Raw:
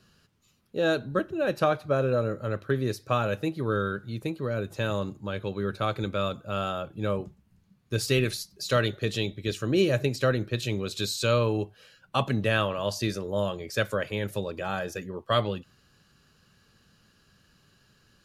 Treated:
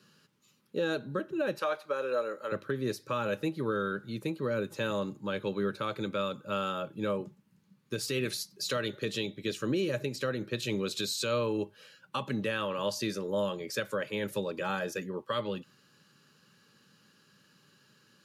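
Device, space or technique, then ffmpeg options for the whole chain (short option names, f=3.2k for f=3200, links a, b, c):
PA system with an anti-feedback notch: -filter_complex "[0:a]asettb=1/sr,asplit=3[a][b][c];[a]atrim=end=1.584[d];[b]atrim=start=1.58:end=2.52,asetpts=PTS-STARTPTS,afade=t=in:d=0.004:c=qsin,afade=t=out:st=0.936:d=0.004:c=qsin,highpass=540[e];[c]atrim=start=2.516[f];[d][e]acrossfade=d=0.004:c1=hsin:c2=qsin[g];[g][f]acrossfade=d=0.004:c1=qsin:c2=hsin,highpass=f=140:w=0.5412,highpass=f=140:w=1.3066,asuperstop=centerf=700:order=12:qfactor=5.2,alimiter=limit=-21.5dB:level=0:latency=1:release=245"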